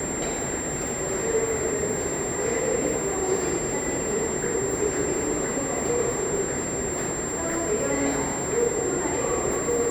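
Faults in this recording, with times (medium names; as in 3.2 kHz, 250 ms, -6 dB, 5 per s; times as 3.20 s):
whine 7.4 kHz -30 dBFS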